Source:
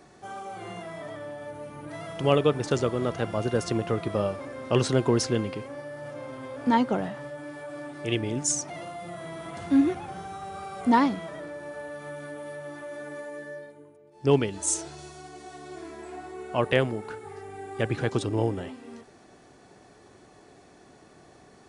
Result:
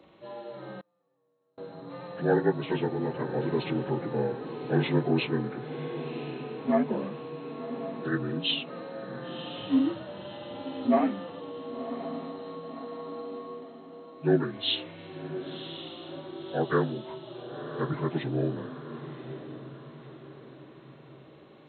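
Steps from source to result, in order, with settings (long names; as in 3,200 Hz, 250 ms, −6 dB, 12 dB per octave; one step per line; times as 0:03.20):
partials spread apart or drawn together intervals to 76%
feedback delay with all-pass diffusion 1,054 ms, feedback 48%, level −11 dB
0:00.80–0:01.58: gate with flip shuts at −36 dBFS, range −34 dB
level −1.5 dB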